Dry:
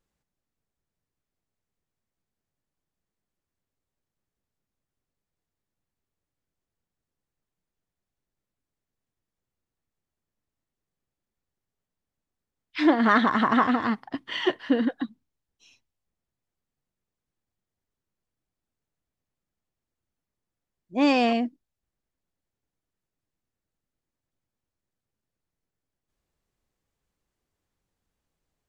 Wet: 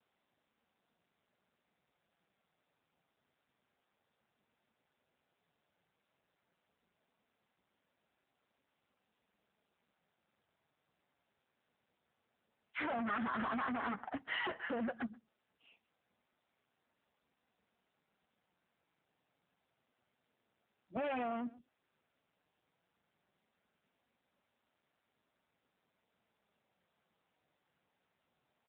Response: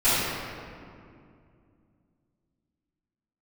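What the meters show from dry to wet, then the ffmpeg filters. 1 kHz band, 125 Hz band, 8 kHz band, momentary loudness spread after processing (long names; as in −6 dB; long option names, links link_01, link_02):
−14.0 dB, −13.0 dB, can't be measured, 9 LU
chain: -filter_complex "[0:a]flanger=delay=2.7:depth=6.5:regen=-21:speed=0.12:shape=triangular,aresample=8000,volume=26dB,asoftclip=hard,volume=-26dB,aresample=44100,lowpass=2100,equalizer=frequency=330:width=5:gain=-12,aecho=1:1:1.4:0.36,asplit=2[link_01][link_02];[link_02]adelay=128.3,volume=-29dB,highshelf=frequency=4000:gain=-2.89[link_03];[link_01][link_03]amix=inputs=2:normalize=0,acompressor=threshold=-33dB:ratio=16,highpass=frequency=190:width=0.5412,highpass=frequency=190:width=1.3066,asoftclip=type=tanh:threshold=-38.5dB,adynamicequalizer=threshold=0.00112:dfrequency=1600:dqfactor=1.1:tfrequency=1600:tqfactor=1.1:attack=5:release=100:ratio=0.375:range=2:mode=boostabove:tftype=bell,volume=4.5dB" -ar 8000 -c:a libopencore_amrnb -b:a 7950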